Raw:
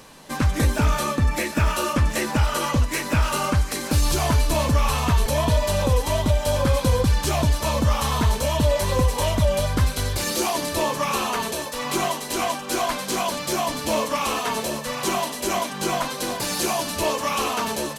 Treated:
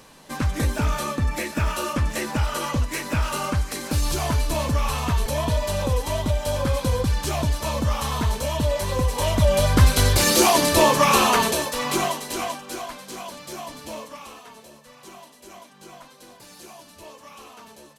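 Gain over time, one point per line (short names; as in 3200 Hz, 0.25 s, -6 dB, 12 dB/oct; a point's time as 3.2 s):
9 s -3 dB
9.96 s +7 dB
11.32 s +7 dB
12.52 s -4.5 dB
12.93 s -11 dB
13.85 s -11 dB
14.53 s -20 dB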